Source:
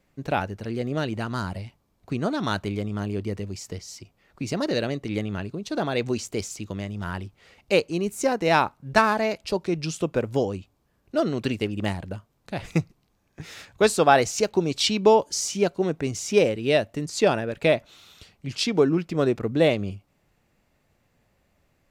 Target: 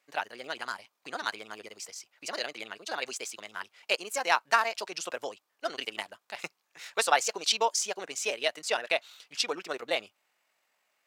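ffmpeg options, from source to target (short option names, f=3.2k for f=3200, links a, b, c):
-af "atempo=1.9,highpass=930,asetrate=45938,aresample=44100"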